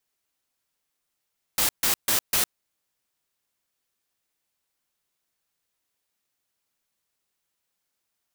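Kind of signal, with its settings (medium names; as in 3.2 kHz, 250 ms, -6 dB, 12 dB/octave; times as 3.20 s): noise bursts white, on 0.11 s, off 0.14 s, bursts 4, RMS -22 dBFS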